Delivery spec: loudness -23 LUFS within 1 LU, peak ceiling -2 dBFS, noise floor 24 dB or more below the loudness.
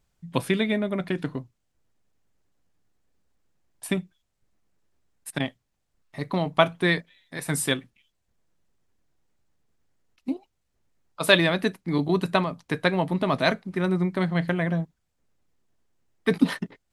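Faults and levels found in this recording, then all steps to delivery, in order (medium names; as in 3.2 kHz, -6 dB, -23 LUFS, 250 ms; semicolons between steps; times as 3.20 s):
loudness -25.5 LUFS; peak level -2.0 dBFS; loudness target -23.0 LUFS
-> trim +2.5 dB; peak limiter -2 dBFS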